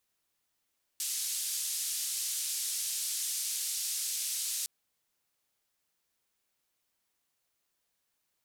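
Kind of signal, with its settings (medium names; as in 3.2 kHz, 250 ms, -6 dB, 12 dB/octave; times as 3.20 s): noise band 4.6–11 kHz, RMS -34.5 dBFS 3.66 s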